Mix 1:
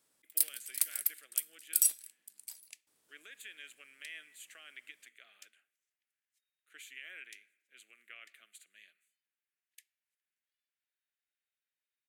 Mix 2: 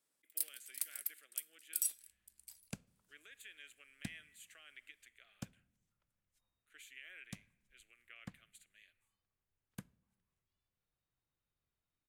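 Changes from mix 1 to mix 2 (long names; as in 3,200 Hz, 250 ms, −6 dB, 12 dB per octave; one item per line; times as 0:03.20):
speech −5.5 dB
first sound −9.0 dB
second sound: remove linear-phase brick-wall high-pass 1,700 Hz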